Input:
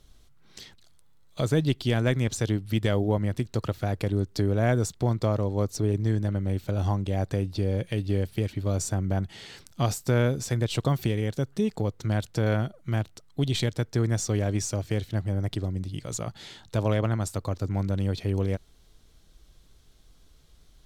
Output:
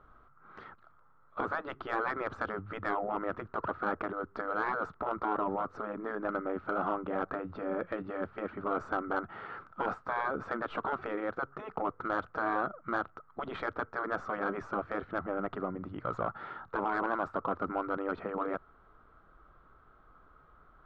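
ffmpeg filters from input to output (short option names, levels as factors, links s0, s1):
-filter_complex "[0:a]lowpass=f=1300:t=q:w=8.3,afftfilt=real='re*lt(hypot(re,im),0.2)':imag='im*lt(hypot(re,im),0.2)':win_size=1024:overlap=0.75,asplit=2[s0][s1];[s1]highpass=f=720:p=1,volume=5.01,asoftclip=type=tanh:threshold=0.2[s2];[s0][s2]amix=inputs=2:normalize=0,lowpass=f=1000:p=1,volume=0.501,volume=0.794"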